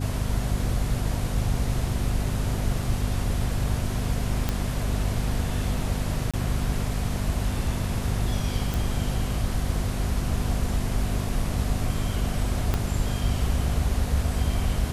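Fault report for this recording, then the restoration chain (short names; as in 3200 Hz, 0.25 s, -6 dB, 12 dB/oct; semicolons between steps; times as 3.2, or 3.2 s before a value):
hum 50 Hz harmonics 5 -29 dBFS
4.49 pop -10 dBFS
6.31–6.34 gap 26 ms
8.74 pop
12.74 pop -10 dBFS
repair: de-click; de-hum 50 Hz, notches 5; interpolate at 6.31, 26 ms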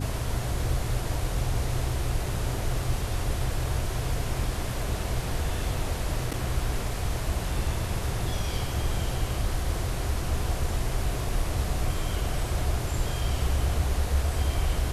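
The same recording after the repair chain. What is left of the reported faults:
12.74 pop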